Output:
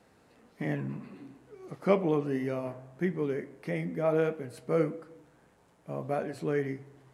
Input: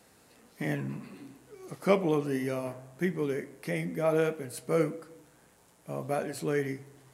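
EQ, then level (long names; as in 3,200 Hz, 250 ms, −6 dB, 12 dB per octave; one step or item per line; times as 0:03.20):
low-pass filter 2,000 Hz 6 dB per octave
0.0 dB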